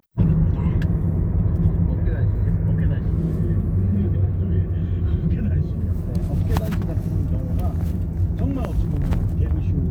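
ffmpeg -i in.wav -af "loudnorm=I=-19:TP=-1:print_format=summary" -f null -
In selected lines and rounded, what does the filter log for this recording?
Input Integrated:    -22.5 LUFS
Input True Peak:      -4.8 dBTP
Input LRA:             2.3 LU
Input Threshold:     -32.5 LUFS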